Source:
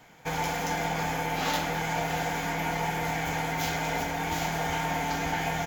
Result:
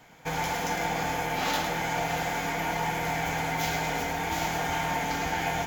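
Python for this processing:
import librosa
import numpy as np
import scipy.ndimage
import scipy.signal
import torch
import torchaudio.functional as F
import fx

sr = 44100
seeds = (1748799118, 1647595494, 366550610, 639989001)

y = x + 10.0 ** (-7.0 / 20.0) * np.pad(x, (int(108 * sr / 1000.0), 0))[:len(x)]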